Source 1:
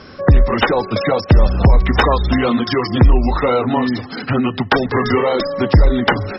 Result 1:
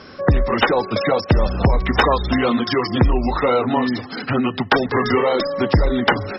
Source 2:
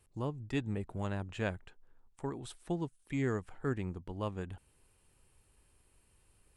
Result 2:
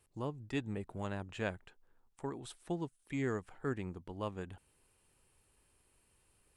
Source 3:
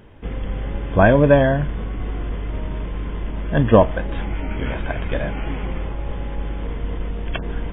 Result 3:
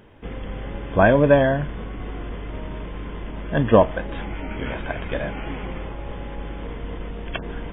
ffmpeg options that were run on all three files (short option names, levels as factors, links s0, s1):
-af "lowshelf=f=130:g=-7,volume=0.891"